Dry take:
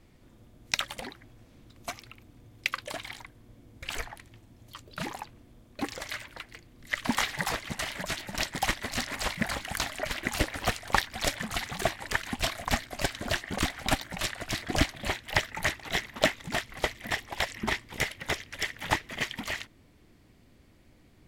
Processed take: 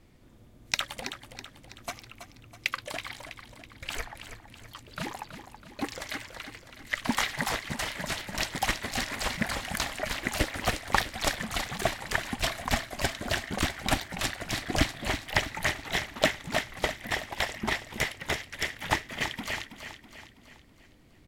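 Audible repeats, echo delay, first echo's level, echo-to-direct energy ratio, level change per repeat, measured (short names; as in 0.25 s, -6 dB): 5, 0.326 s, -10.0 dB, -9.0 dB, -6.0 dB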